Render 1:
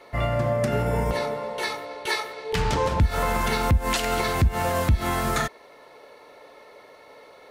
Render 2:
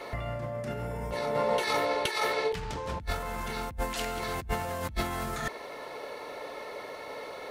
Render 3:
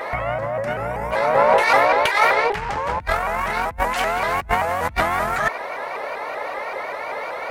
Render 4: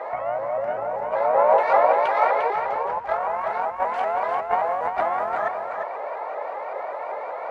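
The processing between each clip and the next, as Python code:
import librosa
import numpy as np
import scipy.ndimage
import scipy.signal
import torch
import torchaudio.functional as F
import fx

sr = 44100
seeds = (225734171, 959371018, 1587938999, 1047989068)

y1 = fx.over_compress(x, sr, threshold_db=-33.0, ratio=-1.0)
y2 = fx.cheby_harmonics(y1, sr, harmonics=(6,), levels_db=(-25,), full_scale_db=-14.5)
y2 = fx.band_shelf(y2, sr, hz=1200.0, db=10.5, octaves=2.4)
y2 = fx.vibrato_shape(y2, sr, shape='saw_up', rate_hz=5.2, depth_cents=160.0)
y2 = F.gain(torch.from_numpy(y2), 4.0).numpy()
y3 = fx.dmg_crackle(y2, sr, seeds[0], per_s=390.0, level_db=-35.0)
y3 = fx.bandpass_q(y3, sr, hz=710.0, q=1.6)
y3 = y3 + 10.0 ** (-6.5 / 20.0) * np.pad(y3, (int(350 * sr / 1000.0), 0))[:len(y3)]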